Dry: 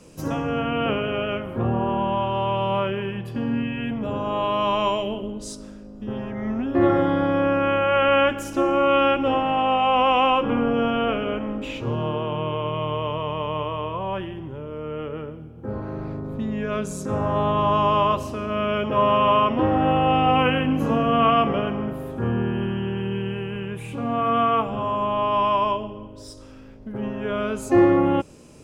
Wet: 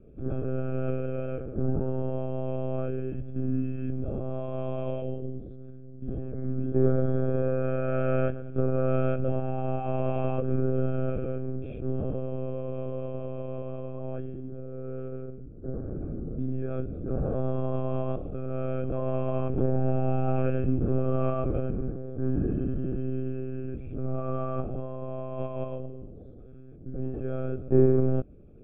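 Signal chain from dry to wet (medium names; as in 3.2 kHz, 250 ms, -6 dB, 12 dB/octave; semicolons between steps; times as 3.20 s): monotone LPC vocoder at 8 kHz 130 Hz; boxcar filter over 45 samples; trim -2 dB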